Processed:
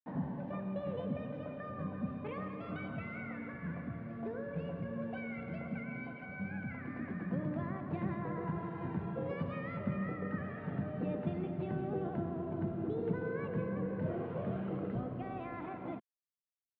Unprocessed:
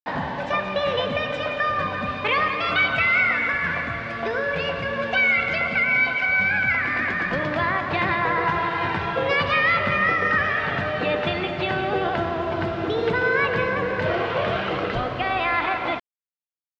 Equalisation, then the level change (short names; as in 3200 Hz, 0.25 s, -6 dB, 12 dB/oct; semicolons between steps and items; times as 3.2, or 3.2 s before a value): band-pass 190 Hz, Q 1.7; air absorption 82 m; -3.0 dB